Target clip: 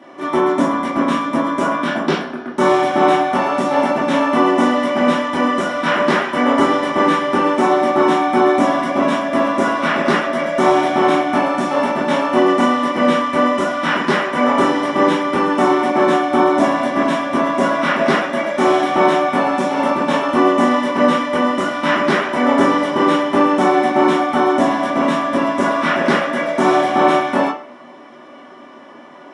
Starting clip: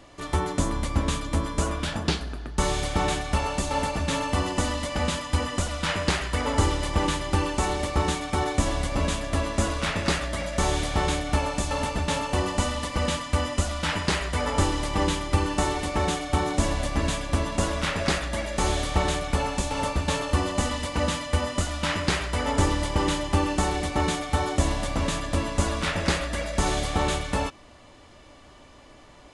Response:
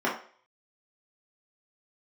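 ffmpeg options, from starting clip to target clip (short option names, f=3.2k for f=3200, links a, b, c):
-filter_complex "[0:a]highpass=170[a];[1:a]atrim=start_sample=2205[b];[a][b]afir=irnorm=-1:irlink=0,volume=-2dB"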